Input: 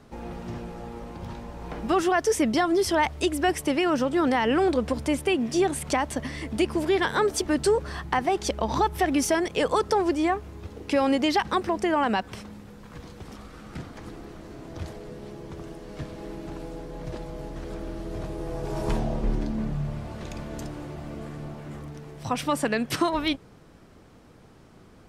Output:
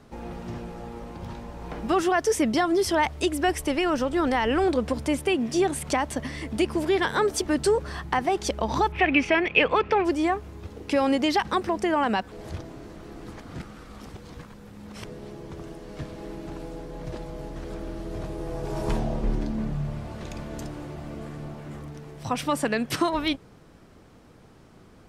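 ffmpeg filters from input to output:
-filter_complex "[0:a]asplit=3[s0][s1][s2];[s0]afade=t=out:st=3.48:d=0.02[s3];[s1]asubboost=boost=7.5:cutoff=53,afade=t=in:st=3.48:d=0.02,afade=t=out:st=4.64:d=0.02[s4];[s2]afade=t=in:st=4.64:d=0.02[s5];[s3][s4][s5]amix=inputs=3:normalize=0,asettb=1/sr,asplit=3[s6][s7][s8];[s6]atrim=end=8.924[s9];[s7]atrim=start=8.92:end=10.05,asetpts=PTS-STARTPTS,afade=t=in:d=0.004:c=qsin,afade=t=out:st=1.126:d=0.004:c=qsin,lowpass=f=2500:t=q:w=7.3[s10];[s8]atrim=start=10.046[s11];[s9][s10]acrossfade=d=0.004:c1=hsin:c2=qsin[s12];[s12][s11]acrossfade=d=0.004:c1=qsin:c2=hsin,asplit=3[s13][s14][s15];[s13]atrim=end=12.322[s16];[s14]atrim=start=12.318:end=15.052,asetpts=PTS-STARTPTS,areverse[s17];[s15]atrim=start=15.048[s18];[s16][s17]acrossfade=d=0.004:c1=hsin:c2=hsin[s19];[s19][s18]acrossfade=d=0.004:c1=hsin:c2=hsin"

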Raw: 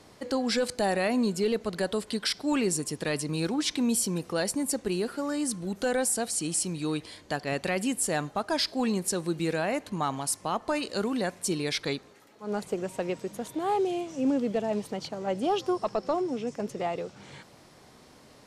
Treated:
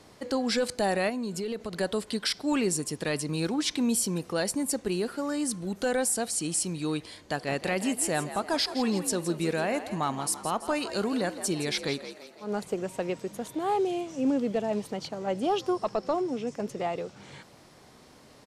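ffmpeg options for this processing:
-filter_complex "[0:a]asettb=1/sr,asplit=3[s0][s1][s2];[s0]atrim=end=1.094[s3];[s1]atrim=start=1.09:end=1.72,asetpts=PTS-STARTPTS,afade=t=in:d=0.004:c=qsin,afade=t=out:st=0.626:d=0.004:c=qsin,acompressor=threshold=0.0355:ratio=6:attack=3.2:release=140:knee=1:detection=peak[s4];[s2]atrim=start=1.716[s5];[s3][s4]acrossfade=d=0.004:c1=hsin:c2=qsin[s6];[s6][s5]acrossfade=d=0.004:c1=qsin:c2=hsin,asplit=3[s7][s8][s9];[s7]afade=t=out:st=7.36:d=0.02[s10];[s8]asplit=6[s11][s12][s13][s14][s15][s16];[s12]adelay=166,afreqshift=59,volume=0.251[s17];[s13]adelay=332,afreqshift=118,volume=0.123[s18];[s14]adelay=498,afreqshift=177,volume=0.0603[s19];[s15]adelay=664,afreqshift=236,volume=0.0295[s20];[s16]adelay=830,afreqshift=295,volume=0.0145[s21];[s11][s17][s18][s19][s20][s21]amix=inputs=6:normalize=0,afade=t=in:st=7.36:d=0.02,afade=t=out:st=12.54:d=0.02[s22];[s9]afade=t=in:st=12.54:d=0.02[s23];[s10][s22][s23]amix=inputs=3:normalize=0"

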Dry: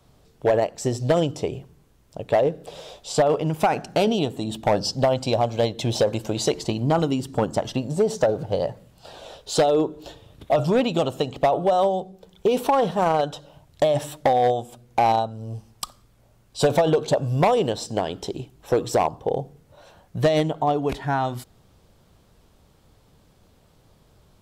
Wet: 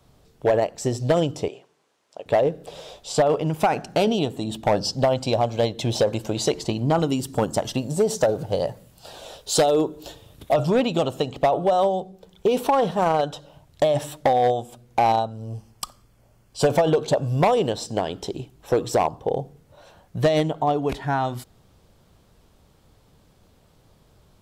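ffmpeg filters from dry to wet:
-filter_complex "[0:a]asettb=1/sr,asplit=3[s0][s1][s2];[s0]atrim=end=1.484[s3];[s1]atrim=start=1.48:end=2.26,asetpts=PTS-STARTPTS,afade=t=in:d=0.004:c=qsin,afade=t=out:st=0.776:d=0.004:c=qsin,highpass=510,lowpass=7800[s4];[s2]atrim=start=2.256[s5];[s3][s4]acrossfade=d=0.004:c1=hsin:c2=qsin[s6];[s6][s5]acrossfade=d=0.004:c1=qsin:c2=hsin,asettb=1/sr,asplit=3[s7][s8][s9];[s7]atrim=end=7.094[s10];[s8]atrim=start=7.09:end=10.54,asetpts=PTS-STARTPTS,afade=t=in:d=0.004:c=qsin,afade=t=out:st=3.446:d=0.004:c=qsin,highshelf=f=6900:g=11.5[s11];[s9]atrim=start=10.536[s12];[s10][s11]acrossfade=d=0.004:c1=hsin:c2=qsin[s13];[s13][s12]acrossfade=d=0.004:c1=qsin:c2=hsin,asettb=1/sr,asplit=3[s14][s15][s16];[s14]atrim=end=15.474[s17];[s15]atrim=start=15.47:end=16.88,asetpts=PTS-STARTPTS,afade=t=in:d=0.004:c=qsin,afade=t=out:st=1.406:d=0.004:c=qsin,bandreject=f=3800:w=8.1[s18];[s16]atrim=start=16.876[s19];[s17][s18]acrossfade=d=0.004:c1=hsin:c2=qsin[s20];[s20][s19]acrossfade=d=0.004:c1=qsin:c2=hsin"

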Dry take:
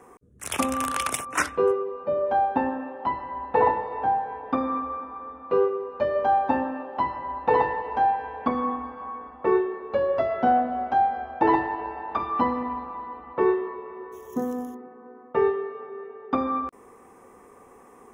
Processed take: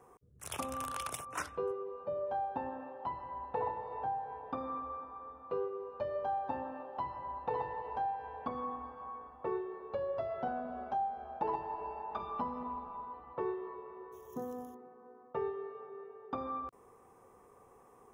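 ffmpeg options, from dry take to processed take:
-filter_complex "[0:a]asettb=1/sr,asplit=3[s0][s1][s2];[s0]atrim=end=10.474[s3];[s1]atrim=start=10.47:end=13.14,asetpts=PTS-STARTPTS,afade=t=in:d=0.004:c=qsin,afade=t=out:st=2.666:d=0.004:c=qsin,aecho=1:1:4.8:0.65,atrim=end_sample=117747[s4];[s2]atrim=start=13.136[s5];[s3][s4]acrossfade=d=0.004:c1=hsin:c2=qsin[s6];[s6][s5]acrossfade=d=0.004:c1=qsin:c2=hsin,equalizer=f=125:t=o:w=1:g=5,equalizer=f=250:t=o:w=1:g=-8,equalizer=f=2000:t=o:w=1:g=-7,equalizer=f=8000:t=o:w=1:g=-4,acompressor=threshold=0.0355:ratio=2,volume=0.422"

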